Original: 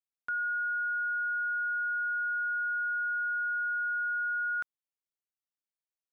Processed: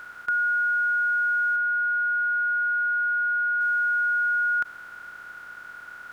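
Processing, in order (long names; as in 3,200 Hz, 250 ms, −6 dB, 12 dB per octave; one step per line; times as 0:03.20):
compressor on every frequency bin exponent 0.2
0:01.56–0:03.61: high-frequency loss of the air 150 metres
level +8 dB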